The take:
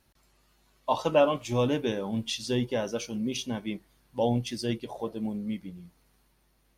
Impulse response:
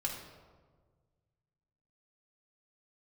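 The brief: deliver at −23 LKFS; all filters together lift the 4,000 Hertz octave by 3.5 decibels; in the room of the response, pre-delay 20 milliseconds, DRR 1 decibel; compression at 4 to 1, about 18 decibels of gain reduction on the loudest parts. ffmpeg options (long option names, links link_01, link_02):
-filter_complex "[0:a]equalizer=frequency=4000:width_type=o:gain=4.5,acompressor=threshold=-39dB:ratio=4,asplit=2[link_01][link_02];[1:a]atrim=start_sample=2205,adelay=20[link_03];[link_02][link_03]afir=irnorm=-1:irlink=0,volume=-3.5dB[link_04];[link_01][link_04]amix=inputs=2:normalize=0,volume=16dB"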